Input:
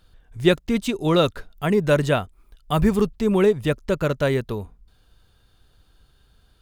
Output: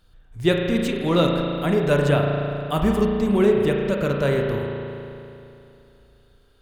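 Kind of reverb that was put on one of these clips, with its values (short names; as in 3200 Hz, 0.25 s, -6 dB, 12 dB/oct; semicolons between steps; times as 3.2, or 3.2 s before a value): spring tank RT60 2.8 s, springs 35 ms, chirp 20 ms, DRR 0.5 dB; gain -2.5 dB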